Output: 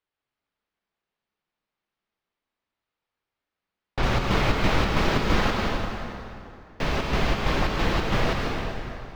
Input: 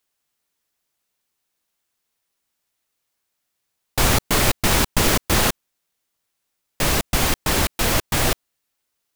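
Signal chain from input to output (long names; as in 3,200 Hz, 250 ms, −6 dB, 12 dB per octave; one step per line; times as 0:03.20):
high-shelf EQ 6,600 Hz −5.5 dB, from 0:04.03 +3.5 dB
flanger 0.33 Hz, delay 2 ms, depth 4.8 ms, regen −63%
high-frequency loss of the air 240 metres
dense smooth reverb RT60 2.7 s, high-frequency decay 0.75×, pre-delay 120 ms, DRR 0 dB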